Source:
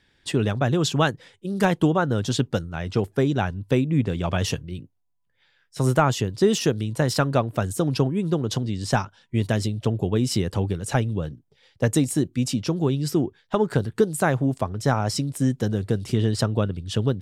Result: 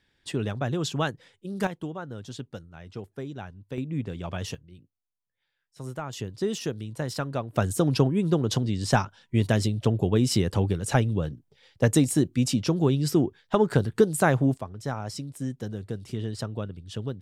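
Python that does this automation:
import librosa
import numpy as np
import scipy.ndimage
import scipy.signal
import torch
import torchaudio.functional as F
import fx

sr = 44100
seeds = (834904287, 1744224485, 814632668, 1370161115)

y = fx.gain(x, sr, db=fx.steps((0.0, -6.5), (1.67, -15.0), (3.78, -9.0), (4.55, -16.0), (6.13, -9.0), (7.56, 0.0), (14.57, -10.0)))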